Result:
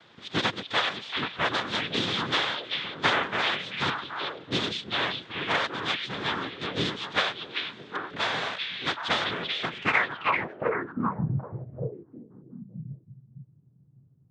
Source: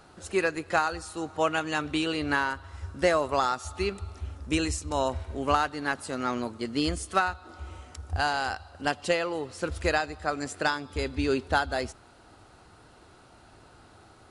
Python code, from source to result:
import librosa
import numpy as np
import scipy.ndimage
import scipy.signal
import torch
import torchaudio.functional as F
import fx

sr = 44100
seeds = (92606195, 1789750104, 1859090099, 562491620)

y = fx.noise_vocoder(x, sr, seeds[0], bands=3)
y = fx.filter_sweep_lowpass(y, sr, from_hz=3500.0, to_hz=130.0, start_s=9.74, end_s=11.31, q=5.7)
y = fx.echo_stepped(y, sr, ms=388, hz=3000.0, octaves=-1.4, feedback_pct=70, wet_db=-1.0)
y = y * 10.0 ** (-3.5 / 20.0)